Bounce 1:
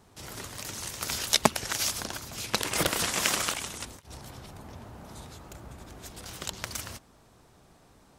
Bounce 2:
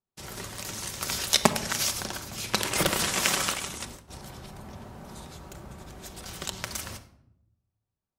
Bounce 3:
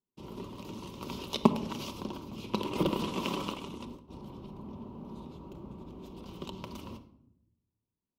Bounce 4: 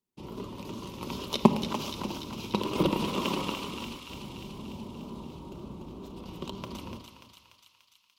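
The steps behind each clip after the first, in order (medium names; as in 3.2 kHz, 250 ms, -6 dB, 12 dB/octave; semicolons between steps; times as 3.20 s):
gate -49 dBFS, range -37 dB; reverberation RT60 0.80 s, pre-delay 5 ms, DRR 8 dB; trim +1 dB
FFT filter 110 Hz 0 dB, 260 Hz +11 dB, 460 Hz +5 dB, 740 Hz -6 dB, 1 kHz +6 dB, 1.7 kHz -21 dB, 2.8 kHz -2 dB, 8.4 kHz -22 dB, 15 kHz -13 dB; trim -5.5 dB
wow and flutter 60 cents; thinning echo 292 ms, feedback 72%, high-pass 1.2 kHz, level -5.5 dB; trim +3 dB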